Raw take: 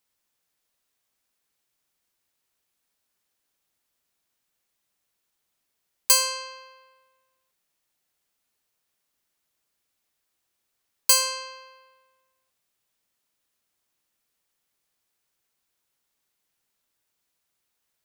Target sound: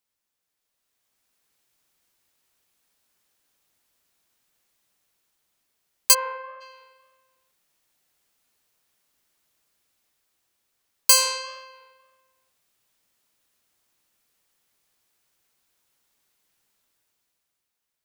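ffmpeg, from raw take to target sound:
-filter_complex "[0:a]flanger=delay=8.7:depth=4.3:regen=-78:speed=1.8:shape=sinusoidal,asplit=3[a][b][c];[a]afade=t=out:st=6.13:d=0.02[d];[b]lowpass=f=1.8k:w=0.5412,lowpass=f=1.8k:w=1.3066,afade=t=in:st=6.13:d=0.02,afade=t=out:st=6.6:d=0.02[e];[c]afade=t=in:st=6.6:d=0.02[f];[d][e][f]amix=inputs=3:normalize=0,dynaudnorm=f=190:g=11:m=10.5dB"

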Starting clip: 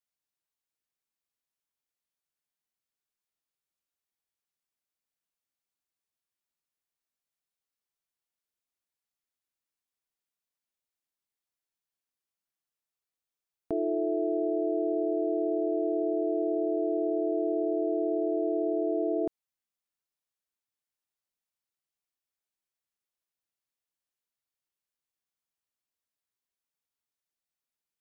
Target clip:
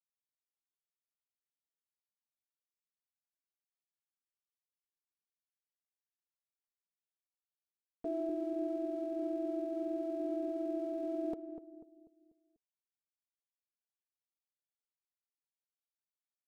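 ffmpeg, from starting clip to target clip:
-filter_complex "[0:a]bandreject=f=440:w=12,aecho=1:1:4.2:0.44,aeval=exprs='sgn(val(0))*max(abs(val(0))-0.0015,0)':c=same,atempo=1.7,asplit=2[a][b];[b]adelay=245,lowpass=f=810:p=1,volume=-8dB,asplit=2[c][d];[d]adelay=245,lowpass=f=810:p=1,volume=0.46,asplit=2[e][f];[f]adelay=245,lowpass=f=810:p=1,volume=0.46,asplit=2[g][h];[h]adelay=245,lowpass=f=810:p=1,volume=0.46,asplit=2[i][j];[j]adelay=245,lowpass=f=810:p=1,volume=0.46[k];[c][e][g][i][k]amix=inputs=5:normalize=0[l];[a][l]amix=inputs=2:normalize=0,volume=-5dB"

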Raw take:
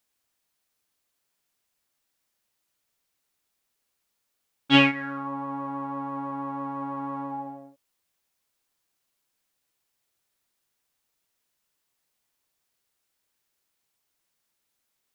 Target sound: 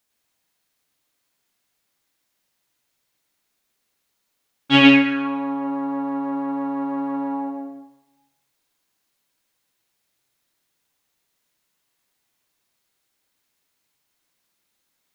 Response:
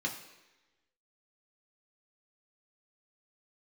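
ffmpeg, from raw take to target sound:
-filter_complex "[0:a]asplit=2[a][b];[1:a]atrim=start_sample=2205,adelay=103[c];[b][c]afir=irnorm=-1:irlink=0,volume=-4dB[d];[a][d]amix=inputs=2:normalize=0,volume=2.5dB"

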